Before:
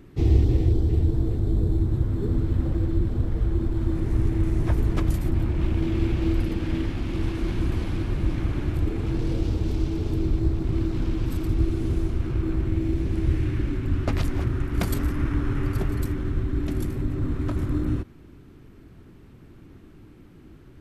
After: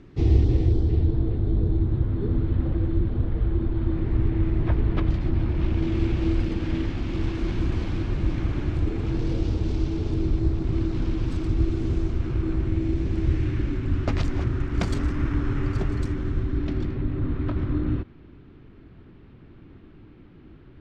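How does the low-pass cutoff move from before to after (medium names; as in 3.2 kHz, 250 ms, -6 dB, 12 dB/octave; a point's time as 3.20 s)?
low-pass 24 dB/octave
0.77 s 6.4 kHz
1.23 s 3.9 kHz
4.94 s 3.9 kHz
5.94 s 7 kHz
16.33 s 7 kHz
16.96 s 4 kHz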